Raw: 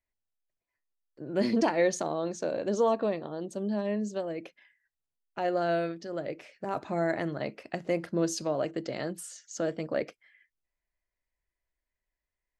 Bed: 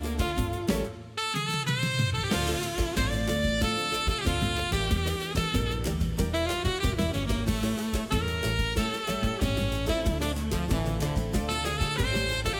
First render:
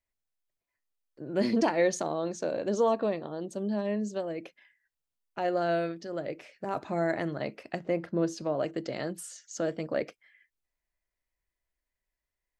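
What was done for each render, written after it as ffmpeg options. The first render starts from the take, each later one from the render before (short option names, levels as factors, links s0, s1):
-filter_complex "[0:a]asettb=1/sr,asplit=3[s0][s1][s2];[s0]atrim=end=7.794[s3];[s1]atrim=start=7.79:end=8.6,asetpts=PTS-STARTPTS,afade=t=in:d=0.004:c=qsin,afade=t=out:st=0.806:d=0.004:c=qsin,lowpass=f=2200:p=1[s4];[s2]atrim=start=8.596[s5];[s3][s4]acrossfade=d=0.004:c1=hsin:c2=qsin[s6];[s6][s5]acrossfade=d=0.004:c1=qsin:c2=hsin"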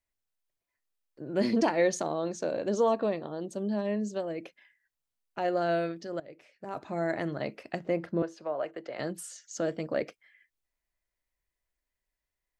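-filter_complex "[0:a]asettb=1/sr,asplit=3[s0][s1][s2];[s0]atrim=end=8.224[s3];[s1]atrim=start=8.22:end=8.99,asetpts=PTS-STARTPTS,afade=t=in:d=0.004:c=qsin,afade=t=out:st=0.766:d=0.004:c=qsin,acrossover=split=450 2700:gain=0.158 1 0.2[s4][s5][s6];[s4][s5][s6]amix=inputs=3:normalize=0[s7];[s2]atrim=start=8.986[s8];[s3][s7]acrossfade=d=0.004:c1=hsin:c2=qsin[s9];[s9][s8]acrossfade=d=0.004:c1=qsin:c2=hsin,asplit=2[s10][s11];[s10]atrim=end=6.2,asetpts=PTS-STARTPTS,afade=t=out:st=6.196:d=0.004:c=hsin:silence=0.16788[s12];[s11]atrim=start=6.2,asetpts=PTS-STARTPTS,afade=t=in:d=1.12:silence=0.16788[s13];[s12][s13]concat=n=2:v=0:a=1"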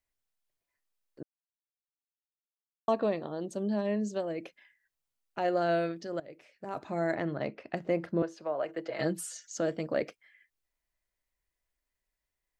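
-filter_complex "[0:a]asettb=1/sr,asplit=3[s0][s1][s2];[s0]atrim=end=7.154[s3];[s1]atrim=start=7.15:end=7.77,asetpts=PTS-STARTPTS,afade=t=in:d=0.004:c=qsin,afade=t=out:st=0.616:d=0.004:c=qsin,adynamicsmooth=sensitivity=1.5:basefreq=3900[s4];[s2]atrim=start=7.766[s5];[s3][s4]acrossfade=d=0.004:c1=hsin:c2=qsin[s6];[s6][s5]acrossfade=d=0.004:c1=qsin:c2=hsin,asettb=1/sr,asplit=3[s7][s8][s9];[s7]atrim=end=8.684[s10];[s8]atrim=start=8.68:end=9.49,asetpts=PTS-STARTPTS,afade=t=in:d=0.004:c=qsin,afade=t=out:st=0.806:d=0.004:c=qsin,aecho=1:1:6.2:0.87,atrim=end_sample=35721[s11];[s9]atrim=start=9.486[s12];[s10][s11]acrossfade=d=0.004:c1=hsin:c2=qsin[s13];[s13][s12]acrossfade=d=0.004:c1=qsin:c2=hsin,asplit=3[s14][s15][s16];[s14]atrim=end=1.23,asetpts=PTS-STARTPTS,afade=t=out:st=1.226:d=0.004:c=hsin[s17];[s15]atrim=start=1.23:end=2.88,asetpts=PTS-STARTPTS,volume=0[s18];[s16]atrim=start=2.88,asetpts=PTS-STARTPTS,afade=t=in:d=0.004:c=hsin[s19];[s17][s18][s19]concat=n=3:v=0:a=1"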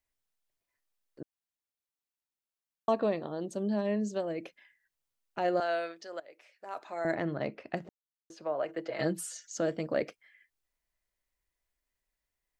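-filter_complex "[0:a]asettb=1/sr,asplit=3[s0][s1][s2];[s0]atrim=end=5.604[s3];[s1]atrim=start=5.6:end=7.05,asetpts=PTS-STARTPTS,afade=t=in:d=0.004:c=qsin,afade=t=out:st=1.446:d=0.004:c=qsin,highpass=630[s4];[s2]atrim=start=7.046[s5];[s3][s4]acrossfade=d=0.004:c1=hsin:c2=qsin[s6];[s6][s5]acrossfade=d=0.004:c1=qsin:c2=hsin,asplit=3[s7][s8][s9];[s7]atrim=end=7.89,asetpts=PTS-STARTPTS,afade=t=out:st=7.886:d=0.004:c=hsin[s10];[s8]atrim=start=7.89:end=8.3,asetpts=PTS-STARTPTS,volume=0[s11];[s9]atrim=start=8.3,asetpts=PTS-STARTPTS,afade=t=in:d=0.004:c=hsin[s12];[s10][s11][s12]concat=n=3:v=0:a=1"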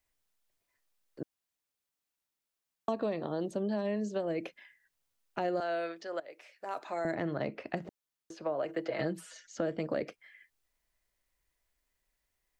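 -filter_complex "[0:a]asplit=2[s0][s1];[s1]alimiter=level_in=1.19:limit=0.0631:level=0:latency=1:release=118,volume=0.841,volume=0.708[s2];[s0][s2]amix=inputs=2:normalize=0,acrossover=split=400|3600[s3][s4][s5];[s3]acompressor=threshold=0.0178:ratio=4[s6];[s4]acompressor=threshold=0.02:ratio=4[s7];[s5]acompressor=threshold=0.00126:ratio=4[s8];[s6][s7][s8]amix=inputs=3:normalize=0"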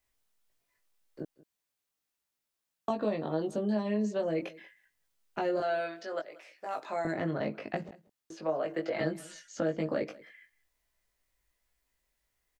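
-filter_complex "[0:a]asplit=2[s0][s1];[s1]adelay=19,volume=0.708[s2];[s0][s2]amix=inputs=2:normalize=0,aecho=1:1:185:0.0841"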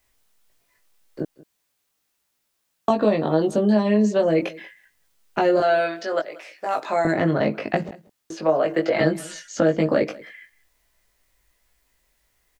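-af "volume=3.98"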